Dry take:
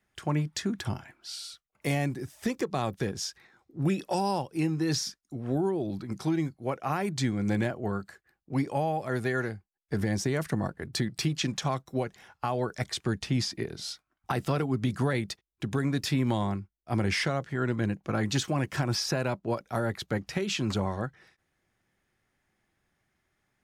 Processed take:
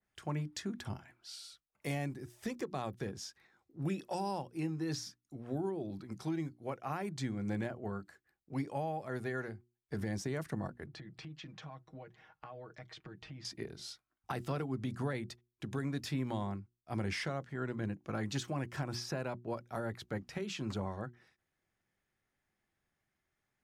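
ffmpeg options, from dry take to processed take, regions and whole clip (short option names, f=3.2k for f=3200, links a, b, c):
-filter_complex "[0:a]asettb=1/sr,asplit=3[a][b][c];[a]atrim=end=10.864[d];[b]atrim=start=10.86:end=13.45,asetpts=PTS-STARTPTS,afade=t=in:d=0.004:c=qsin,afade=t=out:st=2.586:d=0.004:c=qsin,lowpass=2.9k,aecho=1:1:6.4:0.64,atrim=end_sample=114219,acompressor=threshold=-38dB:ratio=4:attack=3.2:release=140:knee=1:detection=peak[e];[c]atrim=start=13.446[f];[d][e]acrossfade=d=0.004:c1=hsin:c2=qsin[g];[g][f]acrossfade=d=0.004:c1=qsin:c2=hsin,bandreject=f=60:t=h:w=6,bandreject=f=120:t=h:w=6,bandreject=f=180:t=h:w=6,bandreject=f=240:t=h:w=6,bandreject=f=300:t=h:w=6,bandreject=f=360:t=h:w=6,adynamicequalizer=threshold=0.00562:dfrequency=2000:dqfactor=0.7:tfrequency=2000:tqfactor=0.7:attack=5:release=100:ratio=0.375:range=2:mode=cutabove:tftype=highshelf,volume=-8.5dB"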